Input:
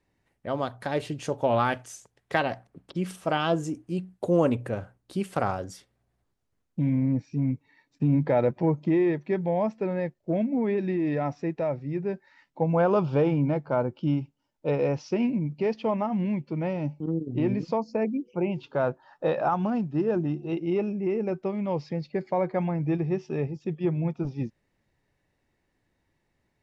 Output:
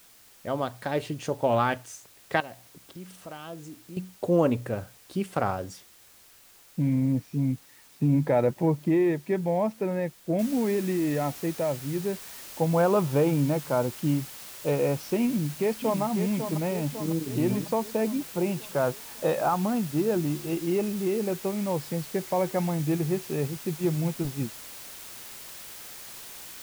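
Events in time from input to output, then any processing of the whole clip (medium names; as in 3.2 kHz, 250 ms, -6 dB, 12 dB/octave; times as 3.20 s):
2.40–3.97 s: compression 2:1, threshold -49 dBFS
10.39 s: noise floor step -55 dB -43 dB
15.27–16.02 s: echo throw 550 ms, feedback 60%, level -7.5 dB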